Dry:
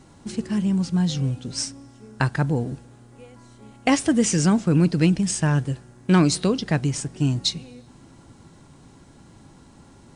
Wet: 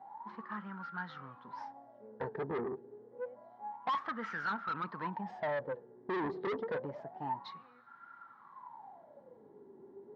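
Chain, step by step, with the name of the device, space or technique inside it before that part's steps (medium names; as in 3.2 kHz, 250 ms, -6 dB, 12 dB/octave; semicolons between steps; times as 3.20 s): wah-wah guitar rig (wah-wah 0.28 Hz 390–1400 Hz, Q 19; valve stage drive 47 dB, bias 0.2; cabinet simulation 90–3900 Hz, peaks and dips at 210 Hz +6 dB, 310 Hz -3 dB, 910 Hz +9 dB, 1.8 kHz +7 dB, 2.7 kHz -7 dB); trim +13.5 dB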